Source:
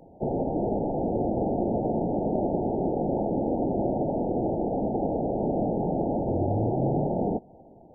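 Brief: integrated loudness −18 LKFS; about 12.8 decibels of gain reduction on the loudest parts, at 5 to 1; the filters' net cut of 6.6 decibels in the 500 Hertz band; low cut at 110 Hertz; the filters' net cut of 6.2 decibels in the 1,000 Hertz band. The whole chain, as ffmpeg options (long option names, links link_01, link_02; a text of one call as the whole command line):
ffmpeg -i in.wav -af "highpass=110,equalizer=frequency=500:width_type=o:gain=-7.5,equalizer=frequency=1000:width_type=o:gain=-5,acompressor=threshold=-41dB:ratio=5,volume=25.5dB" out.wav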